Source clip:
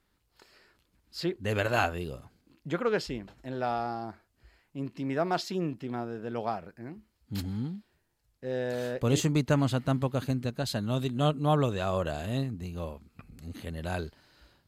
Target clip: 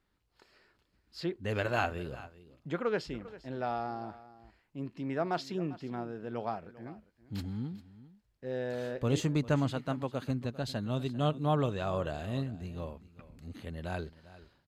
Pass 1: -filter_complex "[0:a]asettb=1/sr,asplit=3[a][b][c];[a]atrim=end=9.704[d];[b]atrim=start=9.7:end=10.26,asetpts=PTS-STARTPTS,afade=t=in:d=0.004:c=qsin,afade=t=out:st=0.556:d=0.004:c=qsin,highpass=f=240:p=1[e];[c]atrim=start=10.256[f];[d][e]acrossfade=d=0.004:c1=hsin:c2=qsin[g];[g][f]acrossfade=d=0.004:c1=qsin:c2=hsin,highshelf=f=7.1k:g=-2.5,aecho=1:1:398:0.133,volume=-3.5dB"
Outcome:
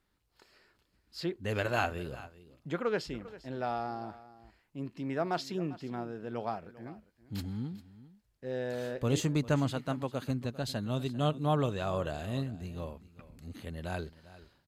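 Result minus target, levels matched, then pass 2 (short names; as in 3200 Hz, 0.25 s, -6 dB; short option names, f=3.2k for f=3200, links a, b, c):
8000 Hz band +3.5 dB
-filter_complex "[0:a]asettb=1/sr,asplit=3[a][b][c];[a]atrim=end=9.704[d];[b]atrim=start=9.7:end=10.26,asetpts=PTS-STARTPTS,afade=t=in:d=0.004:c=qsin,afade=t=out:st=0.556:d=0.004:c=qsin,highpass=f=240:p=1[e];[c]atrim=start=10.256[f];[d][e]acrossfade=d=0.004:c1=hsin:c2=qsin[g];[g][f]acrossfade=d=0.004:c1=qsin:c2=hsin,highshelf=f=7.1k:g=-10.5,aecho=1:1:398:0.133,volume=-3.5dB"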